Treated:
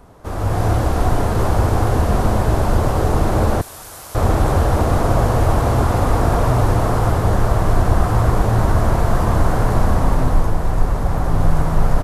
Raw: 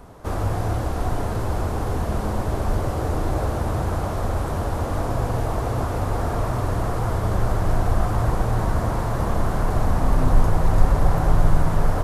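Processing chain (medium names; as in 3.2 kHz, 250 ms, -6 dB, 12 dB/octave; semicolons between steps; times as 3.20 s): on a send: delay 1129 ms -3.5 dB; on the sum: level rider gain up to 10.5 dB; 3.61–4.15 s: pre-emphasis filter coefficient 0.97; trim -1.5 dB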